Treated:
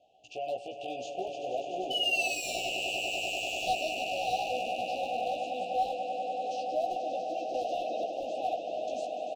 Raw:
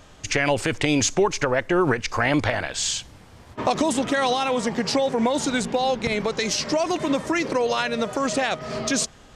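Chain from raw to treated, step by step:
0:01.90–0:03.73: sound drawn into the spectrogram fall 1,500–3,000 Hz −13 dBFS
0:05.93–0:06.44: output level in coarse steps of 19 dB
formant filter a
echo that builds up and dies away 98 ms, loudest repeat 8, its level −11 dB
gain into a clipping stage and back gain 23.5 dB
Chebyshev band-stop filter 780–2,700 Hz, order 5
double-tracking delay 16 ms −2.5 dB
0:07.54–0:08.04: multiband upward and downward compressor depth 100%
level −3 dB

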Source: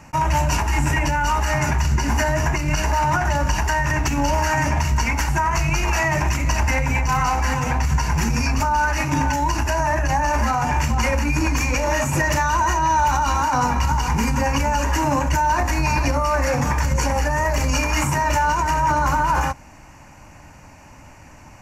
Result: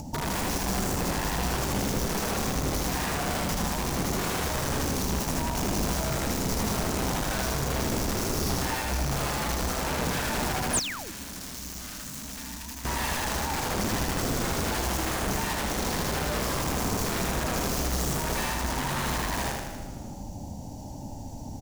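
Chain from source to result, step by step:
elliptic band-stop filter 840–3,600 Hz, stop band 40 dB
wrap-around overflow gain 17.5 dB
downward compressor 6 to 1, threshold −32 dBFS, peak gain reduction 11.5 dB
echo with shifted repeats 117 ms, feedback 63%, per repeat −100 Hz, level −13 dB
bit-depth reduction 10 bits, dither none
repeating echo 79 ms, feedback 56%, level −3 dB
0:10.73–0:11.12: sound drawn into the spectrogram fall 260–11,000 Hz −25 dBFS
0:10.79–0:12.85: guitar amp tone stack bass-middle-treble 5-5-5
noise in a band 180–290 Hz −50 dBFS
low-shelf EQ 420 Hz +4.5 dB
upward compression, threshold −35 dBFS

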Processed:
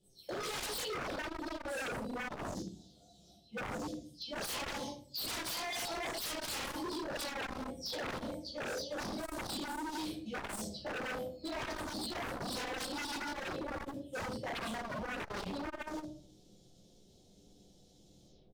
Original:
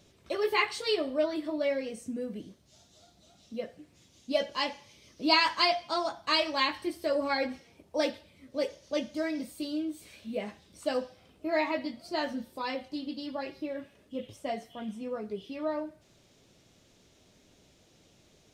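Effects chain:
every frequency bin delayed by itself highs early, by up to 265 ms
dynamic equaliser 910 Hz, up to +5 dB, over −44 dBFS, Q 1.2
slap from a distant wall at 41 metres, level −27 dB
automatic gain control gain up to 8 dB
flat-topped bell 1,600 Hz −15 dB
hum removal 221.8 Hz, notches 11
reversed playback
downward compressor 12 to 1, threshold −35 dBFS, peak gain reduction 21 dB
reversed playback
noise gate −48 dBFS, range −16 dB
rectangular room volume 390 cubic metres, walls furnished, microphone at 4.2 metres
wave folding −34.5 dBFS
saturating transformer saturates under 110 Hz
level +1 dB

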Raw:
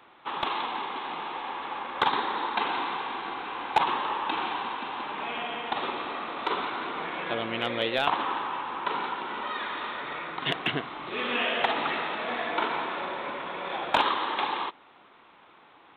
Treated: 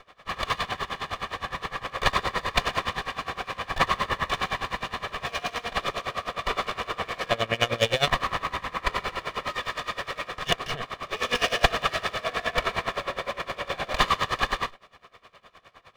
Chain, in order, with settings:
lower of the sound and its delayed copy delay 1.7 ms
tremolo with a sine in dB 9.7 Hz, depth 21 dB
level +9 dB

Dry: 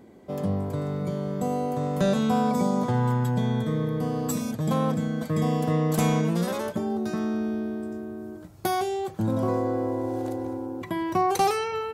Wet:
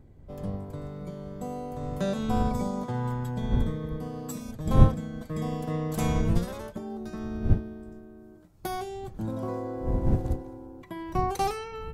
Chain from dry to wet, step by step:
wind on the microphone 100 Hz −27 dBFS
expander for the loud parts 1.5 to 1, over −34 dBFS

